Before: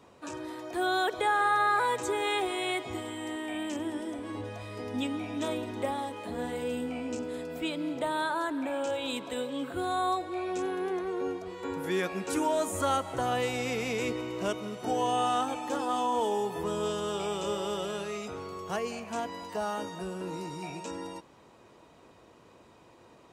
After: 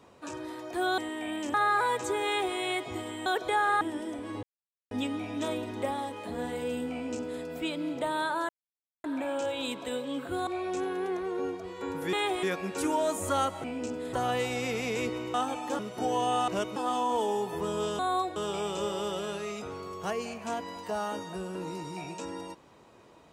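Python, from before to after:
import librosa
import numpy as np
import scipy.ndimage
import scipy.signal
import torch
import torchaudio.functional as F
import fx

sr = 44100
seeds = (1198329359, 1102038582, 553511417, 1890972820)

y = fx.edit(x, sr, fx.swap(start_s=0.98, length_s=0.55, other_s=3.25, other_length_s=0.56),
    fx.duplicate(start_s=2.25, length_s=0.3, to_s=11.95),
    fx.silence(start_s=4.43, length_s=0.48),
    fx.duplicate(start_s=6.93, length_s=0.49, to_s=13.16),
    fx.insert_silence(at_s=8.49, length_s=0.55),
    fx.move(start_s=9.92, length_s=0.37, to_s=17.02),
    fx.swap(start_s=14.37, length_s=0.28, other_s=15.34, other_length_s=0.45), tone=tone)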